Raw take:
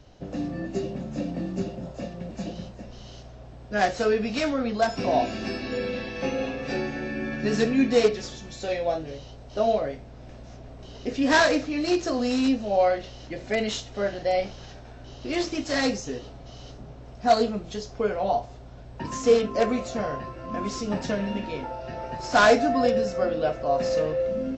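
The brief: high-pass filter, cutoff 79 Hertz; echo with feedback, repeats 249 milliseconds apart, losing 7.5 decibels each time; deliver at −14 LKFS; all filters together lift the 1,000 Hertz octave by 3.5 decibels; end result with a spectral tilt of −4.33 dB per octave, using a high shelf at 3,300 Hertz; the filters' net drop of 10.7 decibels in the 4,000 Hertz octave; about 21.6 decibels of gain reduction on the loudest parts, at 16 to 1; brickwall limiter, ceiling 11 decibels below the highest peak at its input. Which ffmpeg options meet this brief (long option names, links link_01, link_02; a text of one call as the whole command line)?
ffmpeg -i in.wav -af "highpass=79,equalizer=frequency=1000:width_type=o:gain=6.5,highshelf=frequency=3300:gain=-8.5,equalizer=frequency=4000:width_type=o:gain=-8,acompressor=threshold=-33dB:ratio=16,alimiter=level_in=9dB:limit=-24dB:level=0:latency=1,volume=-9dB,aecho=1:1:249|498|747|996|1245:0.422|0.177|0.0744|0.0312|0.0131,volume=27dB" out.wav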